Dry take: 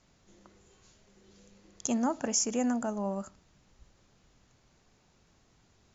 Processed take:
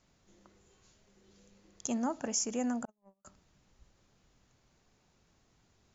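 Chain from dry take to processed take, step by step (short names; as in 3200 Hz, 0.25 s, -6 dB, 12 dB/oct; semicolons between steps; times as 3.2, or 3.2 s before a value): 2.85–3.25 gate -27 dBFS, range -44 dB; gain -4 dB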